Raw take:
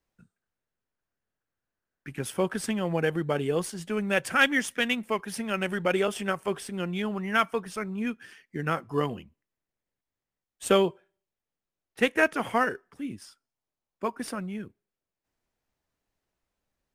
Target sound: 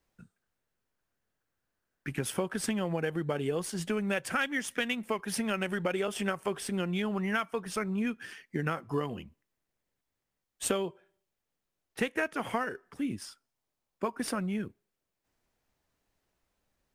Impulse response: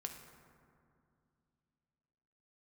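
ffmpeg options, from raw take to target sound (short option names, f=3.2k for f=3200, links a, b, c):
-af "acompressor=threshold=-32dB:ratio=6,volume=4dB"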